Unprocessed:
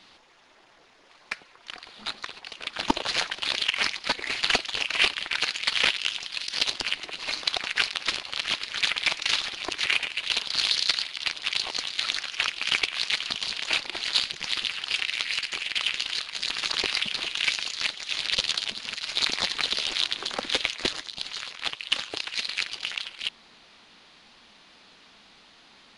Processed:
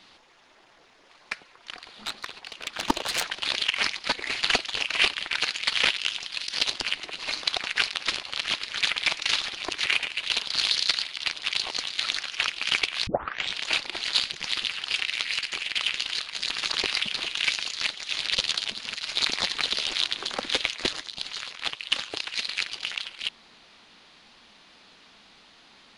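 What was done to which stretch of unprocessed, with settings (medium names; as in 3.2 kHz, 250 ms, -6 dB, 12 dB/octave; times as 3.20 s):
1.77–3.25 s: self-modulated delay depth 0.12 ms
13.07 s: tape start 0.49 s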